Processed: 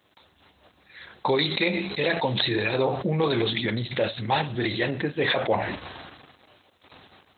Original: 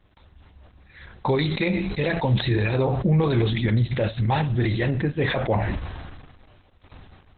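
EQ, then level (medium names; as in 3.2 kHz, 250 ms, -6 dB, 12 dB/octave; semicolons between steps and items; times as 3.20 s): high-pass 120 Hz 12 dB/octave; tone controls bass -9 dB, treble +12 dB; +1.0 dB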